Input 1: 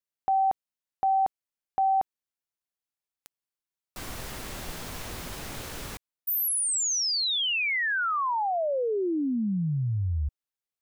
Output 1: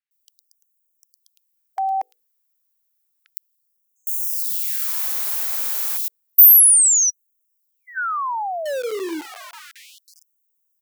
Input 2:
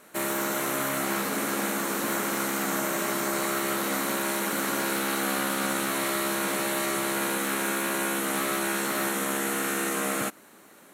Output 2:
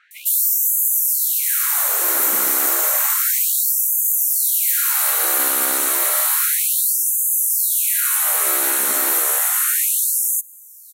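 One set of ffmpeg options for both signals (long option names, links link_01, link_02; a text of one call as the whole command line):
ffmpeg -i in.wav -filter_complex "[0:a]aemphasis=mode=production:type=bsi,bandreject=frequency=50:width_type=h:width=6,bandreject=frequency=100:width_type=h:width=6,bandreject=frequency=150:width_type=h:width=6,bandreject=frequency=200:width_type=h:width=6,bandreject=frequency=250:width_type=h:width=6,bandreject=frequency=300:width_type=h:width=6,bandreject=frequency=350:width_type=h:width=6,bandreject=frequency=400:width_type=h:width=6,bandreject=frequency=450:width_type=h:width=6,bandreject=frequency=500:width_type=h:width=6,acrossover=split=3100[link_01][link_02];[link_02]adelay=110[link_03];[link_01][link_03]amix=inputs=2:normalize=0,acrossover=split=490|1300[link_04][link_05][link_06];[link_04]acrusher=bits=5:mix=0:aa=0.000001[link_07];[link_07][link_05][link_06]amix=inputs=3:normalize=0,afftfilt=real='re*gte(b*sr/1024,210*pow(6200/210,0.5+0.5*sin(2*PI*0.31*pts/sr)))':imag='im*gte(b*sr/1024,210*pow(6200/210,0.5+0.5*sin(2*PI*0.31*pts/sr)))':win_size=1024:overlap=0.75,volume=3.5dB" out.wav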